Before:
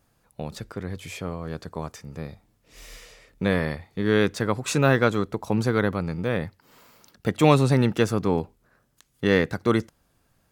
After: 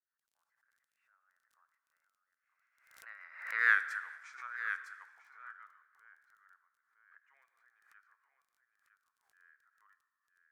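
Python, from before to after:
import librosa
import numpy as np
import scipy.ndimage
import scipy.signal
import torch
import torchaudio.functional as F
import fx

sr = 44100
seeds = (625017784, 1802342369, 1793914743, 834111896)

y = fx.doppler_pass(x, sr, speed_mps=39, closest_m=2.4, pass_at_s=3.73)
y = scipy.signal.sosfilt(scipy.signal.butter(4, 1300.0, 'highpass', fs=sr, output='sos'), y)
y = fx.high_shelf_res(y, sr, hz=2300.0, db=-13.0, q=3.0)
y = y + 10.0 ** (-9.0 / 20.0) * np.pad(y, (int(957 * sr / 1000.0), 0))[:len(y)]
y = fx.env_lowpass(y, sr, base_hz=2100.0, full_db=-37.0)
y = fx.rotary_switch(y, sr, hz=6.7, then_hz=1.1, switch_at_s=5.91)
y = fx.dmg_crackle(y, sr, seeds[0], per_s=17.0, level_db=-69.0)
y = fx.peak_eq(y, sr, hz=10000.0, db=10.0, octaves=2.7)
y = fx.rev_gated(y, sr, seeds[1], gate_ms=480, shape='falling', drr_db=10.5)
y = fx.pre_swell(y, sr, db_per_s=83.0)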